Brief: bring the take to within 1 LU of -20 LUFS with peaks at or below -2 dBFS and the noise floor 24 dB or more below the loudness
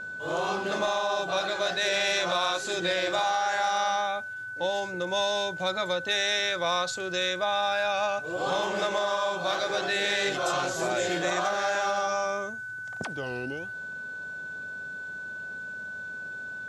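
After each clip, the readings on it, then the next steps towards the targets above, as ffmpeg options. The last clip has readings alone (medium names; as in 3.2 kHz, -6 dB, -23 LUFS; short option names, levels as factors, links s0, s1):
steady tone 1.5 kHz; tone level -35 dBFS; loudness -28.5 LUFS; peak level -15.5 dBFS; loudness target -20.0 LUFS
-> -af "bandreject=f=1500:w=30"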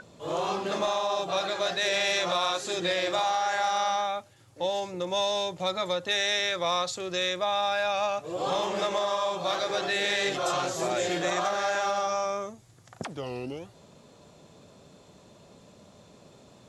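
steady tone not found; loudness -28.0 LUFS; peak level -16.5 dBFS; loudness target -20.0 LUFS
-> -af "volume=2.51"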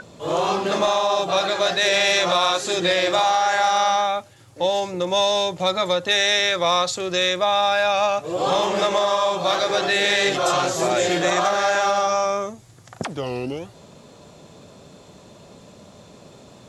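loudness -20.0 LUFS; peak level -8.5 dBFS; noise floor -47 dBFS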